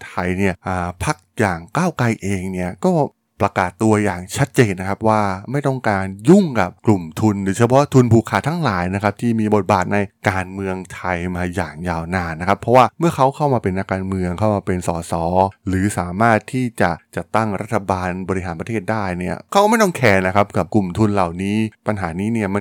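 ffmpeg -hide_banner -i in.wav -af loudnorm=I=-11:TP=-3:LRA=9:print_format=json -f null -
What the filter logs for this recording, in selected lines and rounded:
"input_i" : "-18.3",
"input_tp" : "-1.5",
"input_lra" : "3.6",
"input_thresh" : "-28.3",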